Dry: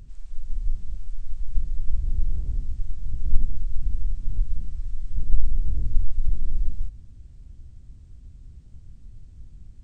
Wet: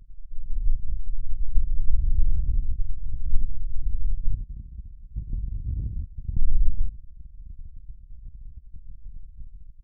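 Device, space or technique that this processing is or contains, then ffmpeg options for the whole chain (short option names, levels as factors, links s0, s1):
voice memo with heavy noise removal: -filter_complex "[0:a]asettb=1/sr,asplit=3[s0][s1][s2];[s0]atrim=end=4.344[s3];[s1]atrim=start=4.34:end=6.37,asetpts=PTS-STARTPTS,afade=t=in:d=0.004:c=qsin,afade=t=out:st=2.026:d=0.004:c=qsin,highpass=71[s4];[s2]atrim=start=6.366[s5];[s3][s4]acrossfade=d=0.004:c1=hsin:c2=qsin[s6];[s6][s5]acrossfade=d=0.004:c1=qsin:c2=hsin,anlmdn=25.1,dynaudnorm=f=250:g=5:m=2.66,volume=0.708"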